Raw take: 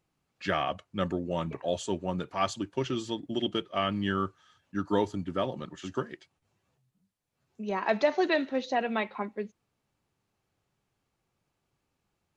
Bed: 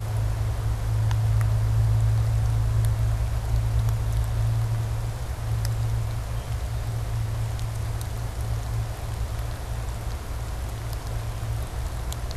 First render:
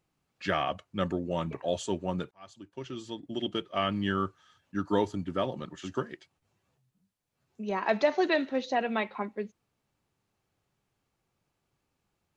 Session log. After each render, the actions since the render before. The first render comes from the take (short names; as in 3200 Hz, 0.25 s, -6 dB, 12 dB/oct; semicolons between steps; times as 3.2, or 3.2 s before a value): 2.31–3.83 fade in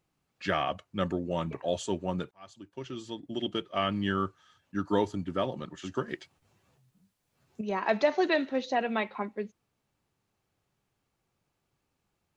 6.08–7.61 gain +7 dB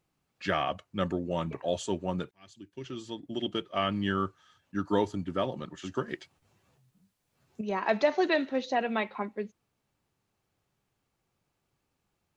2.29–2.85 band shelf 820 Hz -9 dB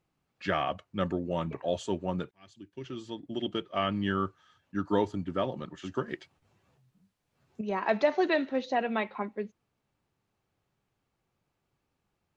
high shelf 5700 Hz -9 dB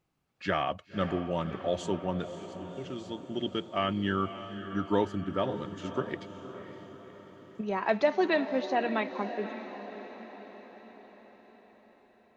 diffused feedback echo 0.555 s, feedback 56%, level -11 dB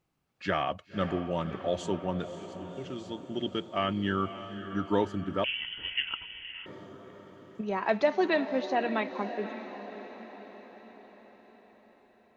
5.44–6.66 inverted band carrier 3200 Hz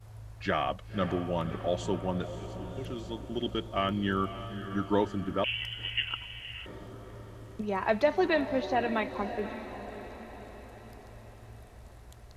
add bed -21 dB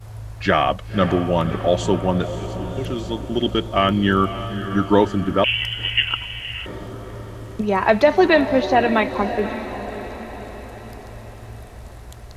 gain +12 dB; limiter -3 dBFS, peak gain reduction 2 dB